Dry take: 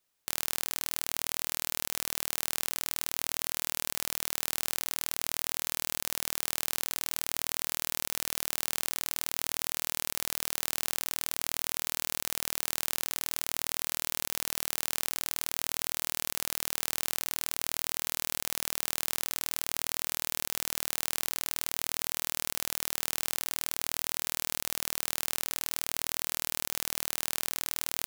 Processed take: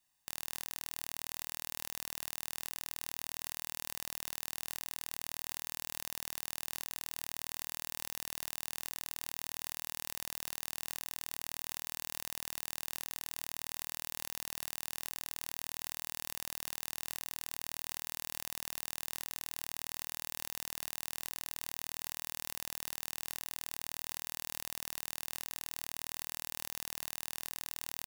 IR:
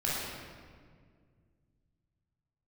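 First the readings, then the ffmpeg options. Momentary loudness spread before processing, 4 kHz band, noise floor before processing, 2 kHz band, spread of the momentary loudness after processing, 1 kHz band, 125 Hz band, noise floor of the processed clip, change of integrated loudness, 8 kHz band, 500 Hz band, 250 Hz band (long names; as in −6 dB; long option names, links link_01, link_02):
0 LU, −8.0 dB, −78 dBFS, −8.0 dB, 0 LU, −7.5 dB, −7.0 dB, −84 dBFS, −8.5 dB, −9.0 dB, −10.5 dB, −8.5 dB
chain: -af "equalizer=frequency=7900:width_type=o:width=0.35:gain=2.5,aecho=1:1:1.1:0.78,alimiter=limit=-12.5dB:level=0:latency=1,aeval=exprs='0.237*(cos(1*acos(clip(val(0)/0.237,-1,1)))-cos(1*PI/2))+0.0422*(cos(4*acos(clip(val(0)/0.237,-1,1)))-cos(4*PI/2))+0.0668*(cos(7*acos(clip(val(0)/0.237,-1,1)))-cos(7*PI/2))':channel_layout=same,volume=-2.5dB"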